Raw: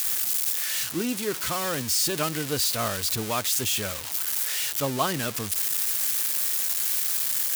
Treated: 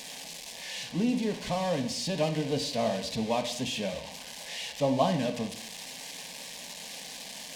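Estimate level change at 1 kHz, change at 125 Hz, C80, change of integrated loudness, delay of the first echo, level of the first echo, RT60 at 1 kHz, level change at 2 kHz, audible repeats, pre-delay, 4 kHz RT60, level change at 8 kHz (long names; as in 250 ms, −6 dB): −2.0 dB, −0.5 dB, 13.0 dB, −7.5 dB, no echo audible, no echo audible, 0.70 s, −7.0 dB, no echo audible, 5 ms, 0.65 s, −14.0 dB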